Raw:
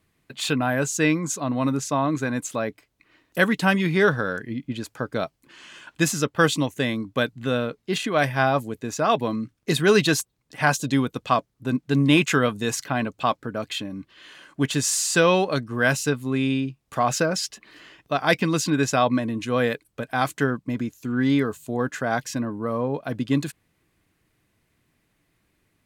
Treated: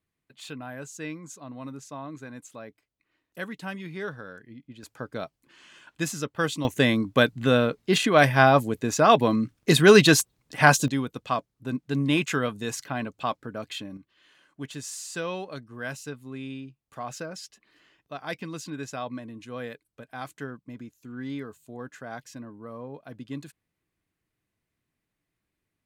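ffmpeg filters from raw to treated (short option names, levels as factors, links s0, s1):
-af "asetnsamples=n=441:p=0,asendcmd='4.83 volume volume -7.5dB;6.65 volume volume 3.5dB;10.88 volume volume -6dB;13.97 volume volume -14dB',volume=0.168"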